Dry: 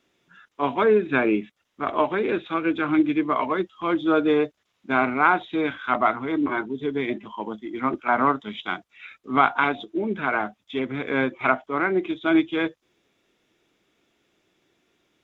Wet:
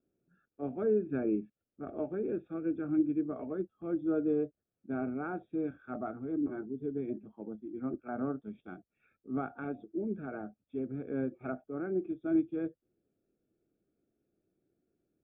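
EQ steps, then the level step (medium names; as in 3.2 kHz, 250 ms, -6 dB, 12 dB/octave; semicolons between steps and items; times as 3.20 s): boxcar filter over 44 samples; distance through air 460 m; -6.5 dB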